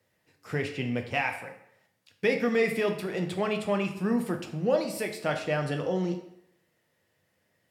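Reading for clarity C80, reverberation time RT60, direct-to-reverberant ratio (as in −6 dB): 12.0 dB, 0.75 s, 4.0 dB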